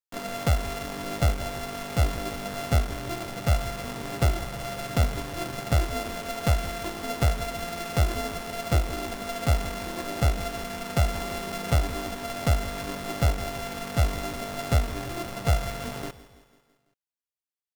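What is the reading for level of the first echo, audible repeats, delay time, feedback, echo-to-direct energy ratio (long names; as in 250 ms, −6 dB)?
−17.0 dB, 4, 166 ms, 56%, −15.5 dB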